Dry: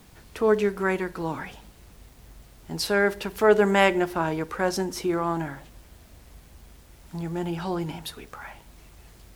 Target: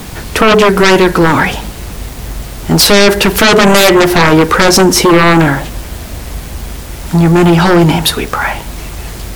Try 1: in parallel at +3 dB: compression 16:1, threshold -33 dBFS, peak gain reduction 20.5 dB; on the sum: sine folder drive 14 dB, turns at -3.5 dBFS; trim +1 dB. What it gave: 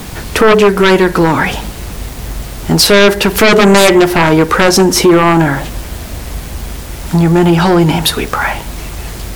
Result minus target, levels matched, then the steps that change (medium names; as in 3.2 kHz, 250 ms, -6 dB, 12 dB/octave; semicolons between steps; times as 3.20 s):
compression: peak gain reduction +11 dB
change: compression 16:1, threshold -21.5 dBFS, peak gain reduction 9.5 dB